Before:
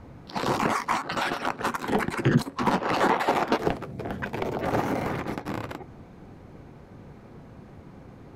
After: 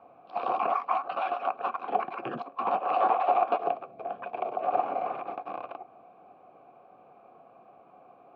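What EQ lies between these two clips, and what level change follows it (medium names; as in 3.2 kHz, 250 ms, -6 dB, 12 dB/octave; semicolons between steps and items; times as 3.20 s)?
vowel filter a; high-pass 210 Hz 6 dB/octave; distance through air 250 m; +8.5 dB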